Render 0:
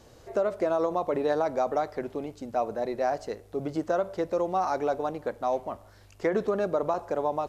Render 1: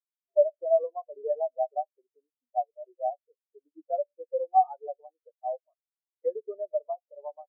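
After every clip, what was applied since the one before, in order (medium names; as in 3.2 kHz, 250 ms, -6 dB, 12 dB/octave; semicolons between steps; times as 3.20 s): high-pass 670 Hz 6 dB/octave; spectral contrast expander 4:1; trim +6 dB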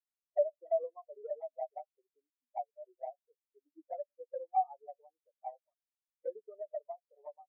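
touch-sensitive flanger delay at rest 3.6 ms, full sweep at -22 dBFS; trim -6.5 dB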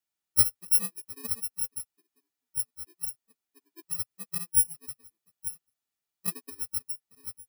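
bit-reversed sample order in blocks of 64 samples; comb of notches 530 Hz; trim +8 dB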